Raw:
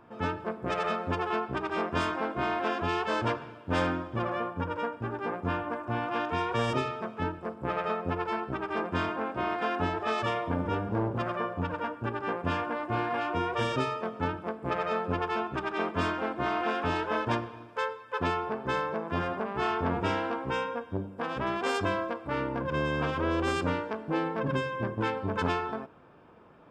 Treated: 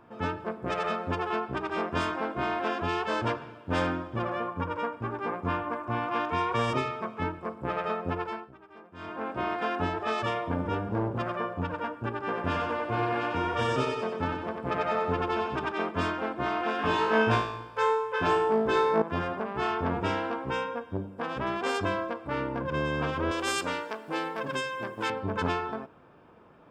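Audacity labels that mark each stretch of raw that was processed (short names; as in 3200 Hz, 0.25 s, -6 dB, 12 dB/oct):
4.480000	7.610000	small resonant body resonances 1100/2200 Hz, height 8 dB, ringing for 25 ms
8.180000	9.300000	dip -19 dB, fades 0.34 s linear
12.210000	15.720000	feedback echo 93 ms, feedback 50%, level -4.5 dB
16.770000	19.020000	flutter echo walls apart 3.1 m, dies away in 0.62 s
23.310000	25.100000	RIAA curve recording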